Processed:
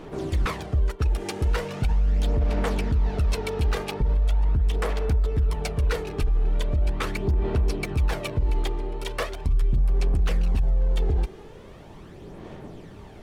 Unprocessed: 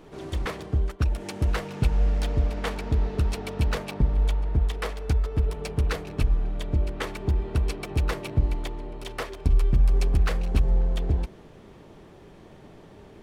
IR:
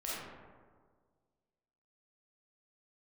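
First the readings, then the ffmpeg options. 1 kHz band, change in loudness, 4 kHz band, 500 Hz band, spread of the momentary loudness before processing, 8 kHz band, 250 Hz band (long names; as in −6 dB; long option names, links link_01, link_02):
+2.5 dB, +1.0 dB, +1.5 dB, +3.0 dB, 8 LU, +2.0 dB, +0.5 dB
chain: -af "aphaser=in_gain=1:out_gain=1:delay=2.5:decay=0.44:speed=0.4:type=sinusoidal,alimiter=limit=-19.5dB:level=0:latency=1:release=47,volume=3.5dB"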